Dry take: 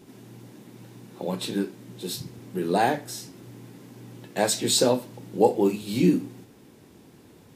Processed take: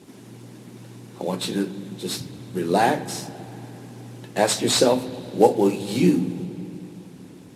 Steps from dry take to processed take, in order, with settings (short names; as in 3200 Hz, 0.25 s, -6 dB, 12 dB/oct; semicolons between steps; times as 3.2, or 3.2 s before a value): CVSD 64 kbps; HPF 77 Hz; on a send at -14.5 dB: tone controls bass +14 dB, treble +9 dB + reverb RT60 3.3 s, pre-delay 46 ms; on the sum: harmonic-percussive split percussive +4 dB; gain +1 dB